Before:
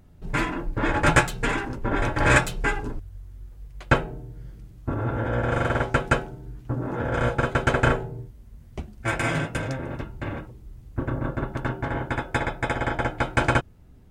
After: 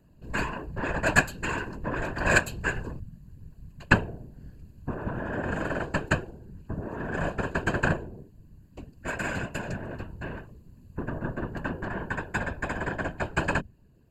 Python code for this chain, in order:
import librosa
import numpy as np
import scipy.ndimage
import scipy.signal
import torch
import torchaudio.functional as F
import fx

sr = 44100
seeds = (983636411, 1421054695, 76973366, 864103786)

p1 = fx.cheby_harmonics(x, sr, harmonics=(3,), levels_db=(-14,), full_scale_db=-1.5)
p2 = fx.rider(p1, sr, range_db=3, speed_s=0.5)
p3 = p1 + (p2 * 10.0 ** (-2.5 / 20.0))
p4 = fx.ripple_eq(p3, sr, per_octave=1.4, db=14)
p5 = fx.whisperise(p4, sr, seeds[0])
y = p5 * 10.0 ** (-5.5 / 20.0)